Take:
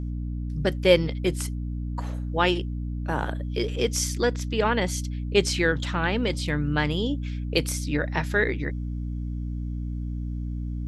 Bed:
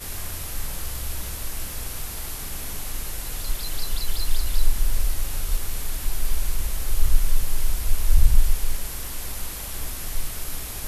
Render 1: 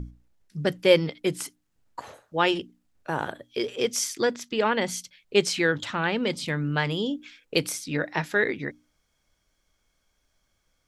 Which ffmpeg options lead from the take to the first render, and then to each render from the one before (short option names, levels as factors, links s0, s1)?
-af "bandreject=f=60:t=h:w=6,bandreject=f=120:t=h:w=6,bandreject=f=180:t=h:w=6,bandreject=f=240:t=h:w=6,bandreject=f=300:t=h:w=6"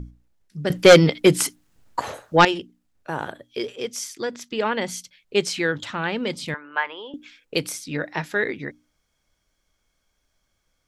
-filter_complex "[0:a]asettb=1/sr,asplit=3[s0][s1][s2];[s0]atrim=end=0.704[s3];[s1]atrim=start=0.7:end=2.45,asetpts=PTS-STARTPTS,afade=t=in:d=0.004:c=qsin,afade=t=out:st=1.746:d=0.004:c=qsin,aeval=exprs='0.596*sin(PI/2*2.51*val(0)/0.596)':c=same[s4];[s2]atrim=start=2.446[s5];[s3][s4]acrossfade=d=0.004:c1=hsin:c2=qsin[s6];[s6][s5]acrossfade=d=0.004:c1=qsin:c2=hsin,asettb=1/sr,asplit=3[s7][s8][s9];[s7]atrim=end=6.544[s10];[s8]atrim=start=6.54:end=7.14,asetpts=PTS-STARTPTS,afade=t=in:d=0.004:c=qsin,afade=t=out:st=0.596:d=0.004:c=qsin,highpass=f=440:w=0.5412,highpass=f=440:w=1.3066,equalizer=f=450:t=q:w=4:g=-6,equalizer=f=660:t=q:w=4:g=-4,equalizer=f=980:t=q:w=4:g=9,equalizer=f=1600:t=q:w=4:g=4,lowpass=f=2800:w=0.5412,lowpass=f=2800:w=1.3066[s11];[s9]atrim=start=7.136[s12];[s10][s11]acrossfade=d=0.004:c1=hsin:c2=qsin[s13];[s13][s12]acrossfade=d=0.004:c1=qsin:c2=hsin,asplit=3[s14][s15][s16];[s14]atrim=end=3.722[s17];[s15]atrim=start=3.718:end=4.332,asetpts=PTS-STARTPTS,volume=0.631[s18];[s16]atrim=start=4.328[s19];[s17][s18]acrossfade=d=0.004:c1=hsin:c2=hsin[s20];[s20][s19]acrossfade=d=0.004:c1=hsin:c2=hsin"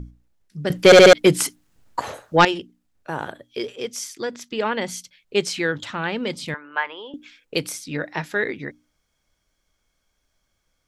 -filter_complex "[0:a]asplit=5[s0][s1][s2][s3][s4];[s0]atrim=end=0.922[s5];[s1]atrim=start=0.848:end=0.922[s6];[s2]atrim=start=0.848:end=0.922[s7];[s3]atrim=start=0.848:end=0.922[s8];[s4]atrim=start=1.128[s9];[s5][s6]acrossfade=d=0.004:c1=hsin:c2=hsin[s10];[s10][s7]acrossfade=d=0.004:c1=hsin:c2=hsin[s11];[s11][s8]acrossfade=d=0.004:c1=hsin:c2=hsin[s12];[s12][s9]acrossfade=d=0.004:c1=hsin:c2=hsin"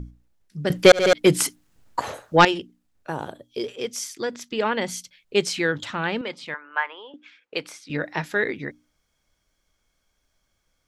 -filter_complex "[0:a]asettb=1/sr,asplit=3[s0][s1][s2];[s0]atrim=end=3.124[s3];[s1]atrim=start=3.12:end=3.64,asetpts=PTS-STARTPTS,afade=t=in:d=0.004:c=qsin,afade=t=out:st=0.516:d=0.004:c=qsin,equalizer=f=1800:t=o:w=1.2:g=-10[s4];[s2]atrim=start=3.636[s5];[s3][s4]acrossfade=d=0.004:c1=hsin:c2=qsin[s6];[s6][s5]acrossfade=d=0.004:c1=qsin:c2=hsin,asettb=1/sr,asplit=3[s7][s8][s9];[s7]atrim=end=6.214[s10];[s8]atrim=start=6.21:end=7.9,asetpts=PTS-STARTPTS,afade=t=in:d=0.004:c=qsin,afade=t=out:st=1.686:d=0.004:c=qsin,bandpass=f=1300:t=q:w=0.61[s11];[s9]atrim=start=7.896[s12];[s10][s11]acrossfade=d=0.004:c1=hsin:c2=qsin[s13];[s13][s12]acrossfade=d=0.004:c1=qsin:c2=hsin,asplit=2[s14][s15];[s14]atrim=end=0.92,asetpts=PTS-STARTPTS,afade=t=out:st=0.916:d=0.004:c=hsin[s16];[s15]atrim=start=0.92,asetpts=PTS-STARTPTS,afade=t=in:d=0.42[s17];[s16][s17]concat=n=2:v=0:a=1"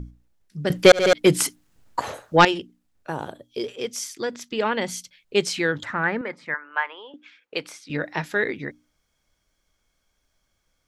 -filter_complex "[0:a]asettb=1/sr,asplit=3[s0][s1][s2];[s0]atrim=end=5.834[s3];[s1]atrim=start=5.83:end=6.64,asetpts=PTS-STARTPTS,afade=t=in:d=0.004:c=qsin,afade=t=out:st=0.806:d=0.004:c=qsin,highshelf=f=2400:t=q:w=3:g=-8.5[s4];[s2]atrim=start=6.636[s5];[s3][s4]acrossfade=d=0.004:c1=hsin:c2=qsin[s6];[s6][s5]acrossfade=d=0.004:c1=qsin:c2=hsin"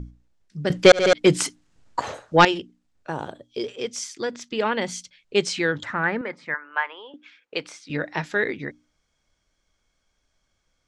-af "lowpass=f=8300:w=0.5412,lowpass=f=8300:w=1.3066"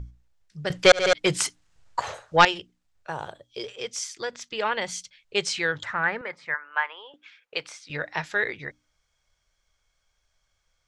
-af "equalizer=f=260:w=1.2:g=-15"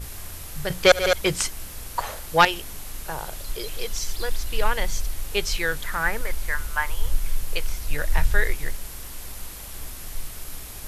-filter_complex "[1:a]volume=0.562[s0];[0:a][s0]amix=inputs=2:normalize=0"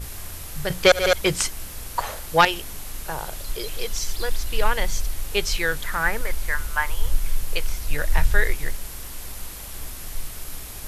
-af "volume=1.19,alimiter=limit=0.708:level=0:latency=1"